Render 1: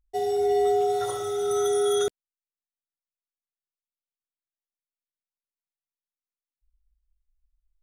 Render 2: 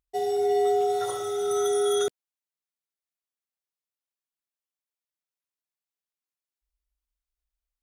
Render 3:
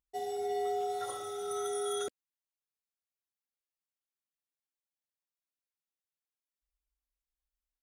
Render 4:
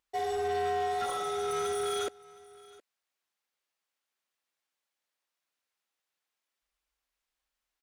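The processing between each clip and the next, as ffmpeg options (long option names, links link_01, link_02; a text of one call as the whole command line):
ffmpeg -i in.wav -af "highpass=frequency=180:poles=1" out.wav
ffmpeg -i in.wav -af "aecho=1:1:3.7:0.37,volume=-7.5dB" out.wav
ffmpeg -i in.wav -filter_complex "[0:a]asplit=2[link_01][link_02];[link_02]highpass=frequency=720:poles=1,volume=19dB,asoftclip=type=tanh:threshold=-24dB[link_03];[link_01][link_03]amix=inputs=2:normalize=0,lowpass=frequency=3300:poles=1,volume=-6dB,aecho=1:1:716:0.0794" out.wav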